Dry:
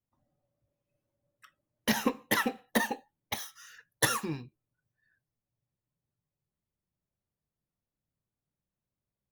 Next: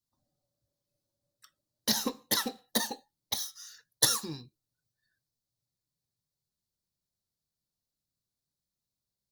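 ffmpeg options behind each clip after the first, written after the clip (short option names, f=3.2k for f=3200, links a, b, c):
-af "highshelf=f=3.3k:t=q:w=3:g=8.5,volume=-4.5dB"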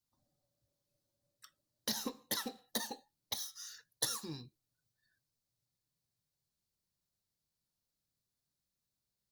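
-af "acompressor=threshold=-41dB:ratio=2"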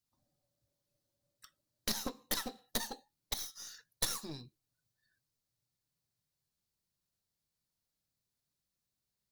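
-af "aeval=exprs='0.168*(cos(1*acos(clip(val(0)/0.168,-1,1)))-cos(1*PI/2))+0.0266*(cos(8*acos(clip(val(0)/0.168,-1,1)))-cos(8*PI/2))':c=same"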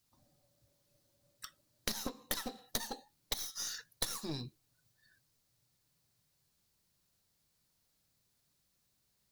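-af "acompressor=threshold=-44dB:ratio=6,volume=10dB"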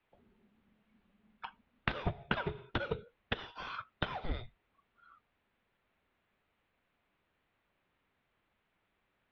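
-af "highpass=220,highpass=f=300:t=q:w=0.5412,highpass=f=300:t=q:w=1.307,lowpass=f=3k:t=q:w=0.5176,lowpass=f=3k:t=q:w=0.7071,lowpass=f=3k:t=q:w=1.932,afreqshift=-360,volume=9.5dB"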